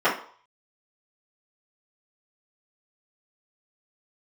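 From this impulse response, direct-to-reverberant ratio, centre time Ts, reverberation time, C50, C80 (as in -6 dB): -12.5 dB, 27 ms, 0.50 s, 7.5 dB, 13.0 dB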